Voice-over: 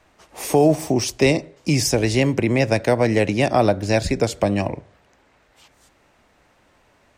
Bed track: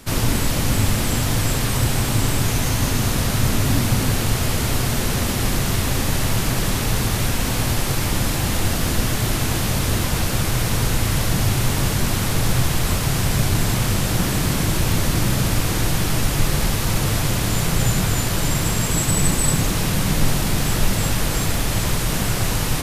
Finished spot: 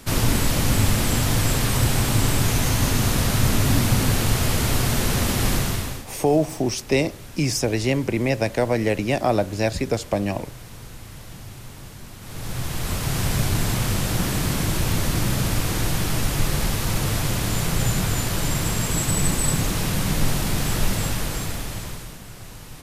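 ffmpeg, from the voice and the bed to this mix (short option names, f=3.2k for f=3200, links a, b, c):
-filter_complex "[0:a]adelay=5700,volume=-3.5dB[a];[1:a]volume=16.5dB,afade=t=out:st=5.53:d=0.53:silence=0.105925,afade=t=in:st=12.2:d=1.04:silence=0.141254,afade=t=out:st=20.9:d=1.28:silence=0.158489[b];[a][b]amix=inputs=2:normalize=0"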